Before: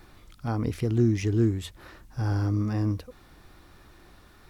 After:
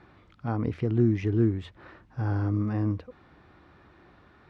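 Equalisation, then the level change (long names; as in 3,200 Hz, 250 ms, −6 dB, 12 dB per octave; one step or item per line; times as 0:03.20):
high-pass filter 81 Hz
low-pass filter 2,400 Hz 12 dB per octave
0.0 dB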